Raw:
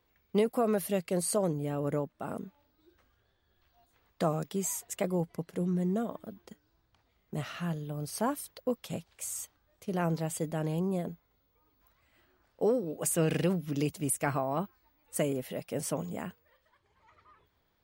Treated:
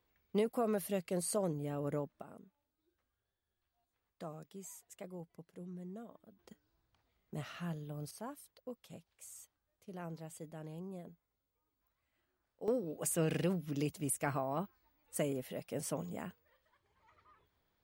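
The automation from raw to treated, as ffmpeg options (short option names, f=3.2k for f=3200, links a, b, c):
-af "asetnsamples=n=441:p=0,asendcmd='2.22 volume volume -17dB;6.39 volume volume -7dB;8.11 volume volume -15dB;12.68 volume volume -5.5dB',volume=-6dB"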